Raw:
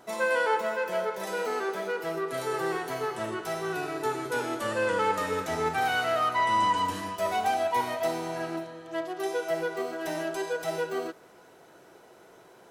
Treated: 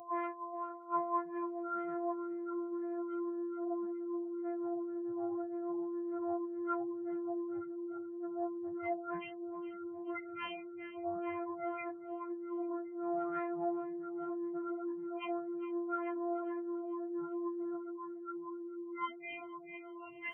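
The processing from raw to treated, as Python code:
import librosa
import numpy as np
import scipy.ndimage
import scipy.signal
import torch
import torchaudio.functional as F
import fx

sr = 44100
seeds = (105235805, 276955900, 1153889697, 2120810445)

y = np.r_[np.sort(x[:len(x) // 128 * 128].reshape(-1, 128), axis=1).ravel(), x[len(x) // 128 * 128:]]
y = scipy.signal.sosfilt(scipy.signal.butter(2, 2800.0, 'lowpass', fs=sr, output='sos'), y)
y = fx.over_compress(y, sr, threshold_db=-33.0, ratio=-0.5)
y = fx.low_shelf(y, sr, hz=120.0, db=6.5)
y = fx.echo_diffused(y, sr, ms=882, feedback_pct=52, wet_db=-5)
y = fx.spec_gate(y, sr, threshold_db=-10, keep='strong')
y = fx.notch(y, sr, hz=610.0, q=12.0)
y = 10.0 ** (-22.5 / 20.0) * np.tanh(y / 10.0 ** (-22.5 / 20.0))
y = fx.echo_feedback(y, sr, ms=261, feedback_pct=49, wet_db=-14)
y = fx.stretch_vocoder_free(y, sr, factor=1.6)
y = np.diff(y, prepend=0.0)
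y = fx.bell_lfo(y, sr, hz=1.9, low_hz=770.0, high_hz=2000.0, db=16)
y = F.gain(torch.from_numpy(y), 18.0).numpy()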